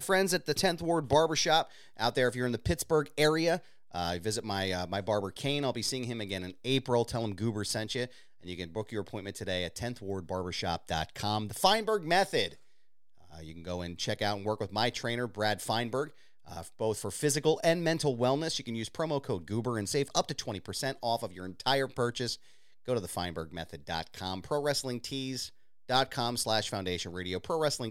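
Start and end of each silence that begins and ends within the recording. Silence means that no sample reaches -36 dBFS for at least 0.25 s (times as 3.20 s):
1.63–1.99 s
3.58–3.95 s
8.06–8.47 s
12.48–13.40 s
16.05–16.51 s
22.34–22.88 s
25.46–25.90 s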